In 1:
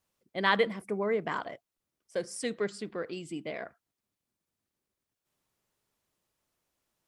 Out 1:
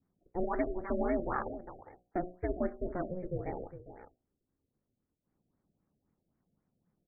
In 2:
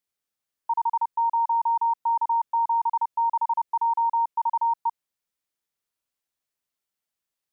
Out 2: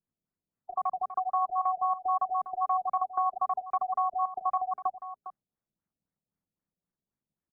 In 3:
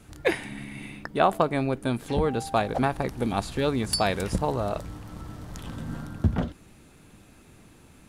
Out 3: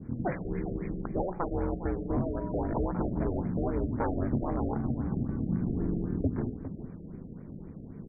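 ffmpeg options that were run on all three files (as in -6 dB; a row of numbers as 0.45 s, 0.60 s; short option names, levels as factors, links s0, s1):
-af "aemphasis=mode=reproduction:type=riaa,bandreject=f=60:t=h:w=6,bandreject=f=120:t=h:w=6,bandreject=f=180:t=h:w=6,bandreject=f=240:t=h:w=6,bandreject=f=300:t=h:w=6,bandreject=f=360:t=h:w=6,bandreject=f=420:t=h:w=6,bandreject=f=480:t=h:w=6,bandreject=f=540:t=h:w=6,bandreject=f=600:t=h:w=6,adynamicequalizer=threshold=0.0141:dfrequency=1400:dqfactor=0.9:tfrequency=1400:tqfactor=0.9:attack=5:release=100:ratio=0.375:range=3:mode=boostabove:tftype=bell,acompressor=threshold=0.0631:ratio=4,aeval=exprs='val(0)*sin(2*PI*180*n/s)':c=same,asoftclip=type=hard:threshold=0.0841,asuperstop=centerf=4300:order=4:qfactor=0.82,aecho=1:1:406:0.251,afftfilt=real='re*lt(b*sr/1024,710*pow(2500/710,0.5+0.5*sin(2*PI*3.8*pts/sr)))':imag='im*lt(b*sr/1024,710*pow(2500/710,0.5+0.5*sin(2*PI*3.8*pts/sr)))':win_size=1024:overlap=0.75"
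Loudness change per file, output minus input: -4.0 LU, -5.5 LU, -5.0 LU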